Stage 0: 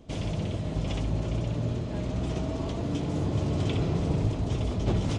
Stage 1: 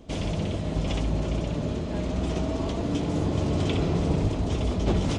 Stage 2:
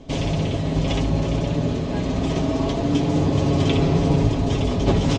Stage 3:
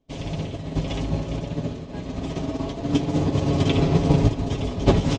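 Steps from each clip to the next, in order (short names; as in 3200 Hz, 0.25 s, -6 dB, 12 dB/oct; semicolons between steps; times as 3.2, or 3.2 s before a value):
bell 120 Hz -12 dB 0.29 oct; gain +4 dB
LPF 7600 Hz 24 dB/oct; notch 1400 Hz, Q 15; comb 7.3 ms, depth 49%; gain +5.5 dB
upward expander 2.5:1, over -36 dBFS; gain +3.5 dB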